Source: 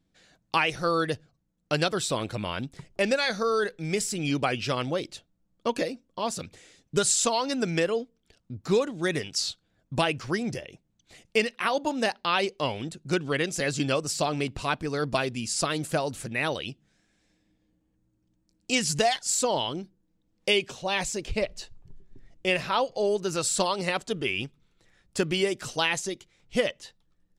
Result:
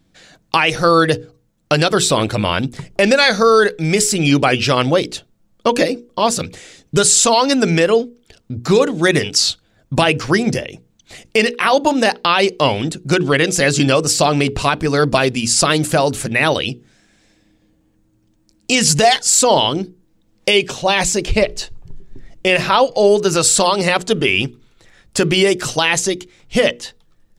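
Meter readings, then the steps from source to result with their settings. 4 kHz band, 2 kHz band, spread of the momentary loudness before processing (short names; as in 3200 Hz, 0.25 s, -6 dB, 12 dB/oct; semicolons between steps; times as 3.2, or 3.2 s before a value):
+12.5 dB, +12.0 dB, 10 LU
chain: notches 60/120/180/240/300/360/420/480 Hz; maximiser +16 dB; gain -1.5 dB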